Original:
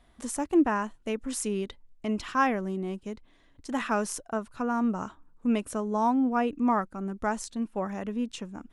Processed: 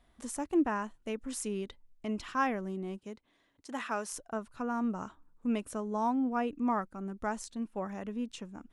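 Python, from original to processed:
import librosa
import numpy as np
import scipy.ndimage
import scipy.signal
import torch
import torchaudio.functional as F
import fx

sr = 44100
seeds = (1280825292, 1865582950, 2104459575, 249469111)

y = fx.highpass(x, sr, hz=fx.line((2.96, 150.0), (4.12, 490.0)), slope=6, at=(2.96, 4.12), fade=0.02)
y = y * librosa.db_to_amplitude(-5.5)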